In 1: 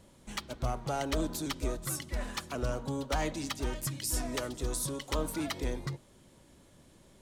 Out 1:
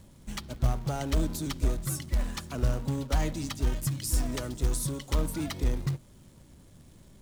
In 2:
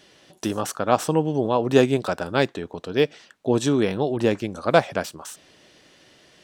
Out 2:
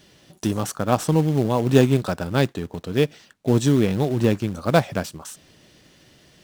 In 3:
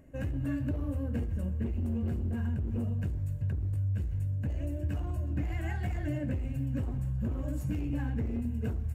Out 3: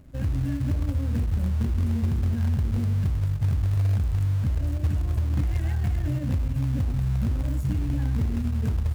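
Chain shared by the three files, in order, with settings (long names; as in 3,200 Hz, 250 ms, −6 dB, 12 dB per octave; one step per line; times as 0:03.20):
bass and treble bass +11 dB, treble +3 dB
in parallel at −5.5 dB: log-companded quantiser 4 bits
on the sum: level −6 dB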